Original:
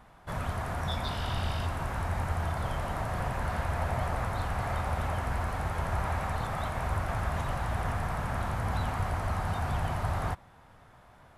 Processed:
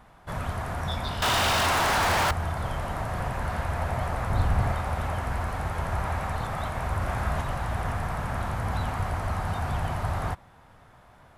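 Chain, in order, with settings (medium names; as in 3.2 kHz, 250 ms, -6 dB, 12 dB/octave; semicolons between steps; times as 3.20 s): 1.22–2.31 s: overdrive pedal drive 40 dB, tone 7.1 kHz, clips at -19.5 dBFS; 4.30–4.72 s: bass shelf 330 Hz +8.5 dB; 6.98–7.42 s: doubling 34 ms -4 dB; trim +2 dB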